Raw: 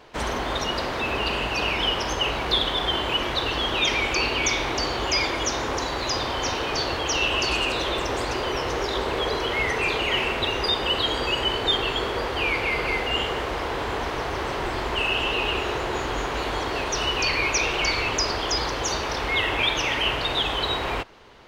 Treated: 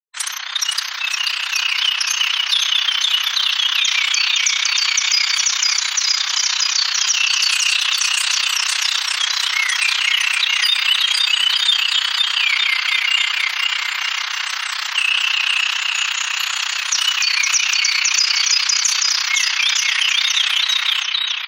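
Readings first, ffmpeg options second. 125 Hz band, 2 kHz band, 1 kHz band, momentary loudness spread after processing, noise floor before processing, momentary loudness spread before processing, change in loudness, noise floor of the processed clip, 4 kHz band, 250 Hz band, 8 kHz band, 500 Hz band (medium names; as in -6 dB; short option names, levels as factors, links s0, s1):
under -40 dB, +8.0 dB, -2.5 dB, 5 LU, -29 dBFS, 6 LU, +8.5 dB, -25 dBFS, +10.5 dB, under -40 dB, +14.5 dB, under -20 dB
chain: -af "aemphasis=mode=production:type=75kf,aecho=1:1:510|918|1244|1506|1714:0.631|0.398|0.251|0.158|0.1,afftfilt=real='re*gte(hypot(re,im),0.0224)':imag='im*gte(hypot(re,im),0.0224)':win_size=1024:overlap=0.75,tremolo=f=31:d=0.788,dynaudnorm=f=440:g=11:m=1.5,highpass=f=1300:w=0.5412,highpass=f=1300:w=1.3066,highshelf=f=7100:g=8,alimiter=level_in=2.99:limit=0.891:release=50:level=0:latency=1,volume=0.596"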